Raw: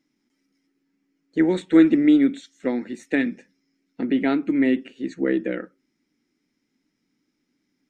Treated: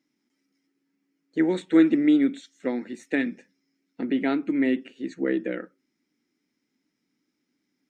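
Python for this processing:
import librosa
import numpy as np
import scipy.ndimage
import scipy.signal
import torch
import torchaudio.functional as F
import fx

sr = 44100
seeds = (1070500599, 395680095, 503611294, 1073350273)

y = fx.highpass(x, sr, hz=140.0, slope=6)
y = F.gain(torch.from_numpy(y), -2.5).numpy()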